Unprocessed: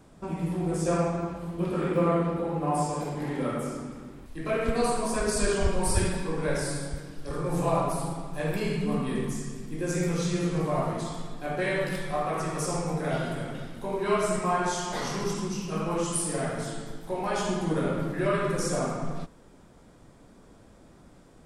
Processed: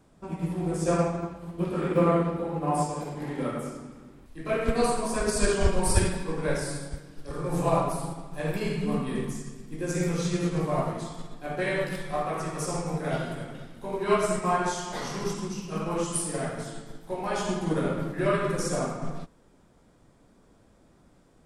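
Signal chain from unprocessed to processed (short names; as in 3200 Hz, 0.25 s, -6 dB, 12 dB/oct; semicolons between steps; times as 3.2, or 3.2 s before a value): upward expander 1.5:1, over -38 dBFS; gain +3.5 dB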